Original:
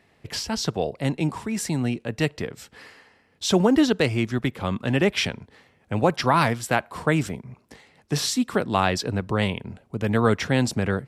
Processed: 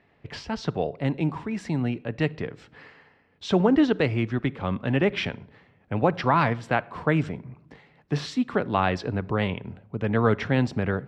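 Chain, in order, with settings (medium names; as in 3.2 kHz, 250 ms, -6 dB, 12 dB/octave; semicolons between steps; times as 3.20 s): low-pass 2.8 kHz 12 dB/octave; simulated room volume 2400 m³, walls furnished, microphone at 0.32 m; trim -1.5 dB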